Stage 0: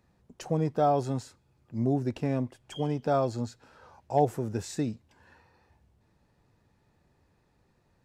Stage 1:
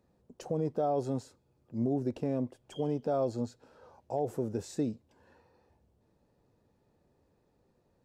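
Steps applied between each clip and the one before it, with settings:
octave-band graphic EQ 250/500/2,000 Hz +4/+8/−4 dB
brickwall limiter −16 dBFS, peak gain reduction 9.5 dB
level −6 dB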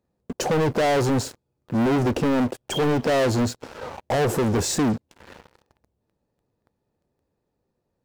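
leveller curve on the samples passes 5
level +4.5 dB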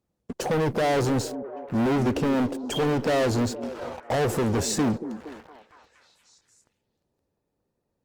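echo through a band-pass that steps 233 ms, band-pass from 270 Hz, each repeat 0.7 octaves, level −9.5 dB
level −2.5 dB
Opus 32 kbit/s 48,000 Hz

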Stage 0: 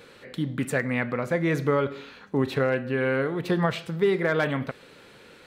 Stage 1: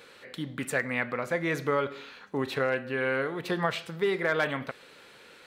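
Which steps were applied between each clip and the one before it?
low-shelf EQ 380 Hz −10.5 dB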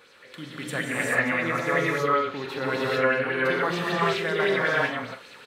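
double-tracking delay 43 ms −11 dB
reverb whose tail is shaped and stops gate 460 ms rising, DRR −7.5 dB
auto-filter bell 5.2 Hz 1,000–6,200 Hz +8 dB
level −5 dB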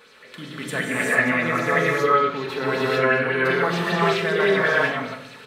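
rectangular room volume 2,500 cubic metres, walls furnished, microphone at 1.5 metres
level +2.5 dB

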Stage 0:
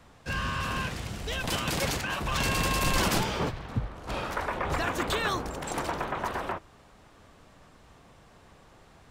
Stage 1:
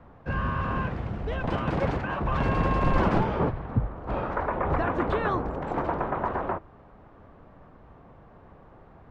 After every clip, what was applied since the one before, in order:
low-pass filter 1,200 Hz 12 dB per octave
level +5 dB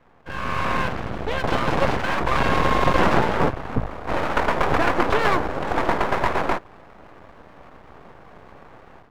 low-shelf EQ 230 Hz −9.5 dB
automatic gain control gain up to 11 dB
half-wave rectification
level +2 dB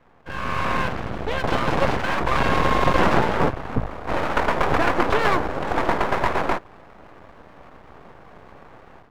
no processing that can be heard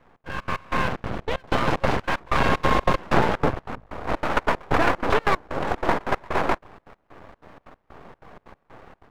gate pattern "xx.xx.x..x" 188 BPM −24 dB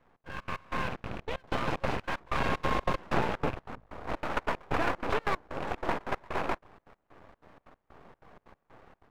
loose part that buzzes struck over −29 dBFS, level −23 dBFS
level −9 dB

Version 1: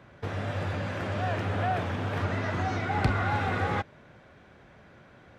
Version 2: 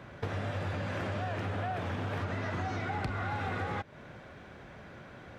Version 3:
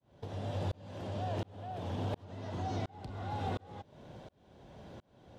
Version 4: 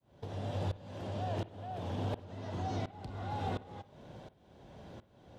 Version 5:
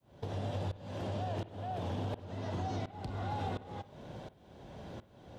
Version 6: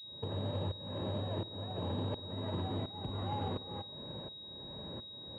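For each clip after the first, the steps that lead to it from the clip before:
in parallel at −3 dB: brickwall limiter −23.5 dBFS, peak gain reduction 11 dB; on the sum: downward compressor 6 to 1, threshold −32 dBFS, peak gain reduction 14 dB
flat-topped bell 1,700 Hz −11.5 dB 1.3 octaves; shaped tremolo saw up 1.4 Hz, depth 100%; level +1.5 dB
convolution reverb, pre-delay 52 ms, DRR 16.5 dB
downward compressor, threshold −37 dBFS, peak gain reduction 7 dB; level +4 dB
notch comb filter 720 Hz; switching amplifier with a slow clock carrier 3,800 Hz; level +1.5 dB

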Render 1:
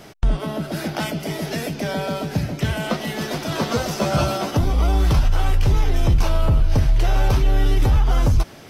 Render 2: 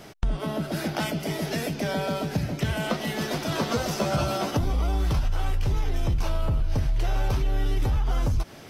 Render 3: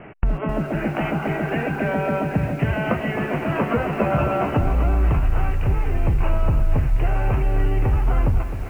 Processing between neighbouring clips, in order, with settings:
downward compressor, threshold −18 dBFS, peak gain reduction 6.5 dB; level −2.5 dB
healed spectral selection 0:01.01–0:01.82, 740–1,600 Hz both; Butterworth low-pass 2,800 Hz 96 dB per octave; feedback echo at a low word length 260 ms, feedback 55%, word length 8 bits, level −10 dB; level +5 dB

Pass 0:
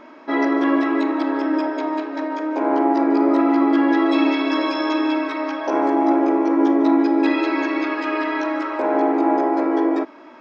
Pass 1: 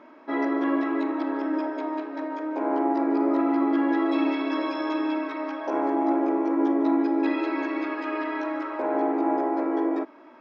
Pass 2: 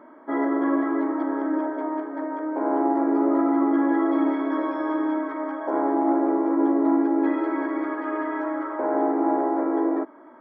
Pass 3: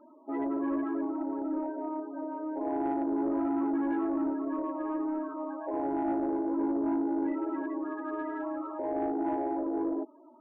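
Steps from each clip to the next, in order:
high-pass filter 140 Hz; high-shelf EQ 3,700 Hz −9.5 dB; level −6 dB
Savitzky-Golay smoothing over 41 samples; level +2 dB
spectral peaks only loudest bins 16; soft clipping −16 dBFS, distortion −19 dB; level −6.5 dB

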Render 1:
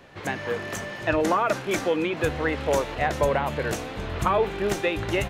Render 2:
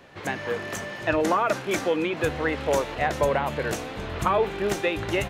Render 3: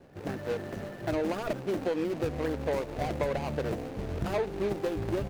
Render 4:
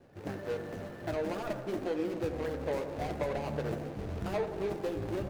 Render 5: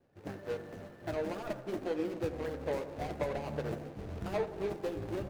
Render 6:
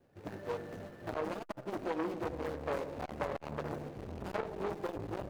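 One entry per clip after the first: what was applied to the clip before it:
low-shelf EQ 88 Hz −5 dB
running median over 41 samples; downward compressor, threshold −26 dBFS, peak gain reduction 6.5 dB
flanger 0.54 Hz, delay 8.4 ms, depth 3.8 ms, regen −53%; bucket-brigade delay 87 ms, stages 1,024, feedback 71%, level −10 dB
expander for the loud parts 1.5 to 1, over −52 dBFS
saturating transformer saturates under 1,200 Hz; level +2.5 dB

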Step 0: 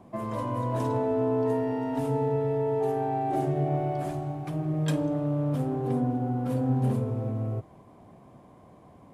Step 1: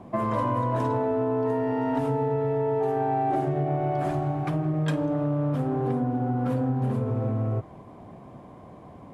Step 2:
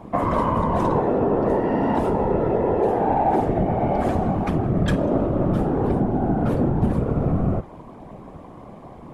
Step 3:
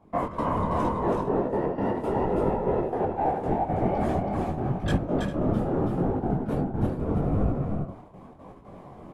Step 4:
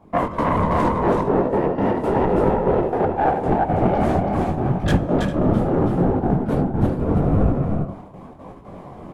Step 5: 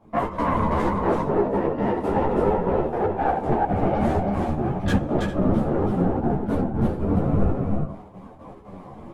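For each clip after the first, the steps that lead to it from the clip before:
high-shelf EQ 5,900 Hz −10 dB; downward compressor, threshold −30 dBFS, peak gain reduction 9.5 dB; dynamic equaliser 1,400 Hz, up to +5 dB, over −52 dBFS, Q 1; level +7 dB
random phases in short frames; level +5 dB
gate pattern ".x.xxxx.x.x.x" 118 BPM −12 dB; on a send: multi-tap delay 326/402 ms −3.5/−13 dB; on the sum: micro pitch shift up and down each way 28 cents; level −1.5 dB
phase distortion by the signal itself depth 0.18 ms; on a send at −19 dB: convolution reverb RT60 1.2 s, pre-delay 3 ms; on the sum: level +7 dB
string-ensemble chorus

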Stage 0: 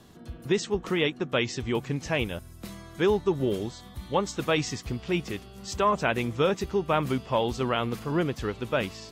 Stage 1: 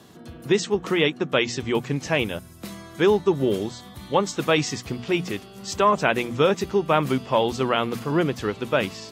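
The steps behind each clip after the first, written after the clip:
high-pass filter 110 Hz 12 dB per octave
mains-hum notches 60/120/180/240 Hz
level +5 dB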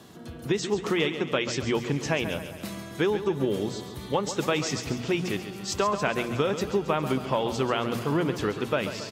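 downward compressor, threshold −22 dBFS, peak gain reduction 8.5 dB
repeating echo 137 ms, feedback 55%, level −10.5 dB
on a send at −20 dB: convolution reverb RT60 3.6 s, pre-delay 55 ms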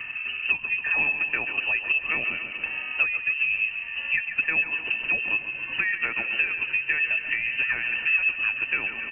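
hollow resonant body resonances 300/1,100 Hz, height 17 dB, ringing for 85 ms
voice inversion scrambler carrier 2,900 Hz
multiband upward and downward compressor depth 70%
level −5 dB

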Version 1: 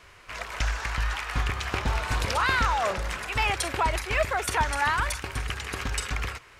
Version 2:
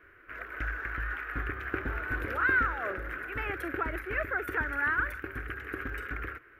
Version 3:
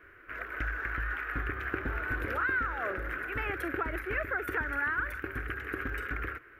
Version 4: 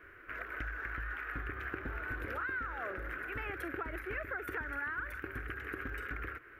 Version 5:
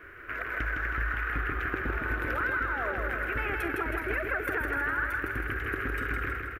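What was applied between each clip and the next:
drawn EQ curve 110 Hz 0 dB, 190 Hz −4 dB, 310 Hz +13 dB, 940 Hz −9 dB, 1,500 Hz +12 dB, 4,500 Hz −22 dB, 8,400 Hz −23 dB, 14,000 Hz +4 dB; level −9 dB
downward compressor 3 to 1, threshold −31 dBFS, peak gain reduction 7 dB; level +2 dB
downward compressor 2 to 1, threshold −41 dBFS, peak gain reduction 8 dB
repeating echo 160 ms, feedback 53%, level −4 dB; level +7 dB

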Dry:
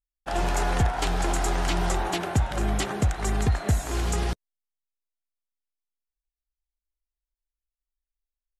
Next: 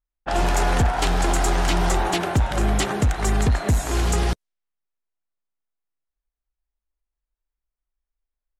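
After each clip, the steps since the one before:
gain into a clipping stage and back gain 19.5 dB
low-pass that shuts in the quiet parts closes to 1,700 Hz, open at −26 dBFS
level +5.5 dB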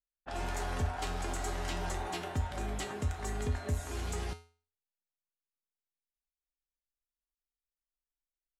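tuned comb filter 84 Hz, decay 0.39 s, harmonics odd, mix 80%
level −5 dB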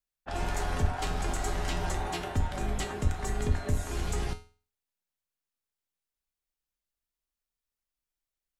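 sub-octave generator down 2 octaves, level −1 dB
level +3.5 dB

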